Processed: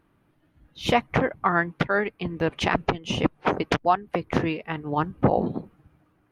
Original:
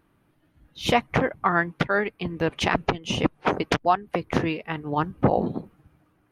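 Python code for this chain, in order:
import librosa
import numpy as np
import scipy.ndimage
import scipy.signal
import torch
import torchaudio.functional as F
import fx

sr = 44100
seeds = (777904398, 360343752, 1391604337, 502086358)

y = fx.high_shelf(x, sr, hz=4700.0, db=-5.0)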